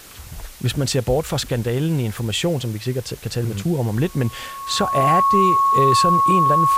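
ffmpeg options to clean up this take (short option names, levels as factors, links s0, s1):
-af "bandreject=f=1100:w=30,afwtdn=0.0079"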